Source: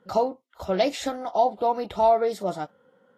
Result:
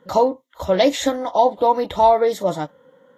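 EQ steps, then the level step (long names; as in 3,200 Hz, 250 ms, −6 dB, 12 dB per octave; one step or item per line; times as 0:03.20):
EQ curve with evenly spaced ripples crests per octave 1.1, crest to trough 7 dB
+6.5 dB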